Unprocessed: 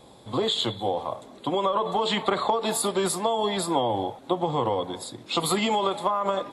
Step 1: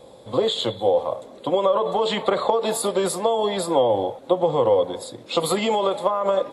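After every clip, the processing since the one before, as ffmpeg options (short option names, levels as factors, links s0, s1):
-af "equalizer=f=520:t=o:w=0.46:g=12"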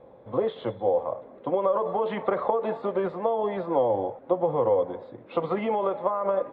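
-af "lowpass=f=2100:w=0.5412,lowpass=f=2100:w=1.3066,volume=0.596"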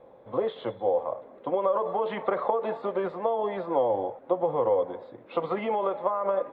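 -af "equalizer=f=80:w=0.3:g=-6.5"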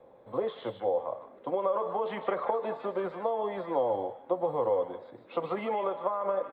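-filter_complex "[0:a]acrossover=split=130|960[s0][s1][s2];[s0]acrusher=samples=11:mix=1:aa=0.000001[s3];[s2]aecho=1:1:152:0.501[s4];[s3][s1][s4]amix=inputs=3:normalize=0,volume=0.668"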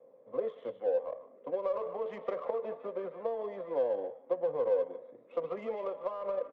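-af "highpass=f=160:w=0.5412,highpass=f=160:w=1.3066,equalizer=f=190:t=q:w=4:g=-5,equalizer=f=340:t=q:w=4:g=-6,equalizer=f=500:t=q:w=4:g=6,equalizer=f=840:t=q:w=4:g=-10,equalizer=f=1500:t=q:w=4:g=-9,lowpass=f=3600:w=0.5412,lowpass=f=3600:w=1.3066,adynamicsmooth=sensitivity=4:basefreq=1900,volume=0.596"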